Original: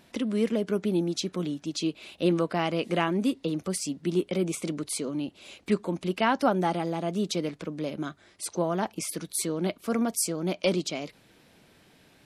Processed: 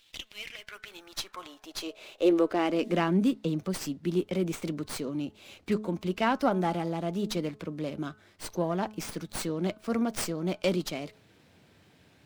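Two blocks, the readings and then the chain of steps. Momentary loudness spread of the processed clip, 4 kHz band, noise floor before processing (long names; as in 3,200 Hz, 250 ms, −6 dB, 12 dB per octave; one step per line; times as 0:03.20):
15 LU, −3.0 dB, −60 dBFS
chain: hum removal 214.1 Hz, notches 7
high-pass filter sweep 3,200 Hz → 82 Hz, 0:00.17–0:03.93
windowed peak hold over 3 samples
level −2.5 dB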